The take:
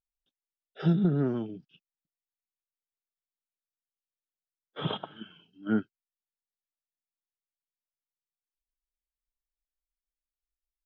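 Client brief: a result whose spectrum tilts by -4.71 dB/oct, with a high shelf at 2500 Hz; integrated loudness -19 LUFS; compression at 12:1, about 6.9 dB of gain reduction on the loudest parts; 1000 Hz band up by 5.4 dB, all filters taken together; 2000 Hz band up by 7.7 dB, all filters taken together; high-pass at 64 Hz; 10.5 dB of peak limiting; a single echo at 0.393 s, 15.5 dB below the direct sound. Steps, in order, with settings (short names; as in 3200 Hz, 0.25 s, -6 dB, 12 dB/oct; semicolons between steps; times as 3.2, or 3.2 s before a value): HPF 64 Hz; bell 1000 Hz +3.5 dB; bell 2000 Hz +8 dB; high shelf 2500 Hz +4.5 dB; compressor 12:1, threshold -26 dBFS; limiter -27.5 dBFS; echo 0.393 s -15.5 dB; gain +20 dB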